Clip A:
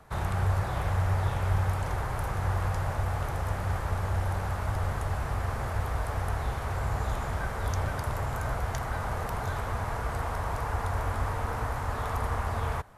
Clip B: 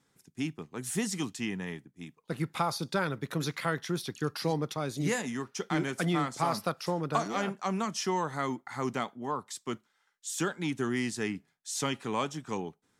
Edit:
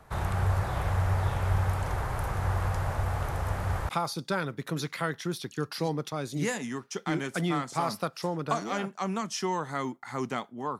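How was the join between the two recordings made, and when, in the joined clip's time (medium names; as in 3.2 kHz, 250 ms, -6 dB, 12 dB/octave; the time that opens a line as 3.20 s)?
clip A
3.89 s: go over to clip B from 2.53 s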